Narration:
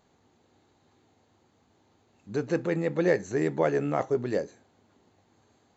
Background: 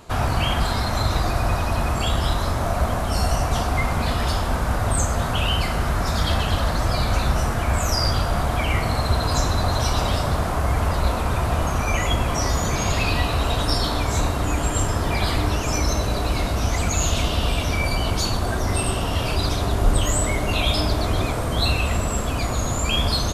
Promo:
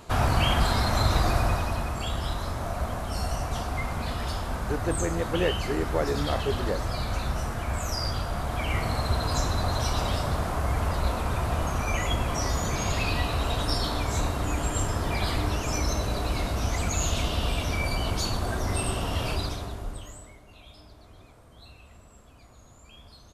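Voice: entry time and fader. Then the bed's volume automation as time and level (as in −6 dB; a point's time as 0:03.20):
2.35 s, −2.5 dB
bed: 0:01.35 −1.5 dB
0:01.91 −8.5 dB
0:08.40 −8.5 dB
0:08.80 −5.5 dB
0:19.32 −5.5 dB
0:20.44 −29.5 dB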